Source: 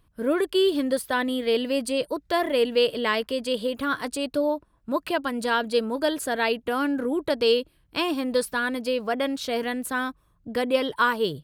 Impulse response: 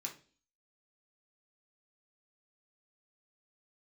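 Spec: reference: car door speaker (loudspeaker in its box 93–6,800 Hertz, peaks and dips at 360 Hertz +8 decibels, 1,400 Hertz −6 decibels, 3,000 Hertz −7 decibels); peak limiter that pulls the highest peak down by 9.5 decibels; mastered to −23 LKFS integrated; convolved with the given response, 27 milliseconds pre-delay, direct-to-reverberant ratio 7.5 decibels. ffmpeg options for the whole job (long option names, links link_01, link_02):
-filter_complex "[0:a]alimiter=limit=-19.5dB:level=0:latency=1,asplit=2[link_01][link_02];[1:a]atrim=start_sample=2205,adelay=27[link_03];[link_02][link_03]afir=irnorm=-1:irlink=0,volume=-6dB[link_04];[link_01][link_04]amix=inputs=2:normalize=0,highpass=93,equalizer=frequency=360:width_type=q:width=4:gain=8,equalizer=frequency=1400:width_type=q:width=4:gain=-6,equalizer=frequency=3000:width_type=q:width=4:gain=-7,lowpass=frequency=6800:width=0.5412,lowpass=frequency=6800:width=1.3066,volume=4dB"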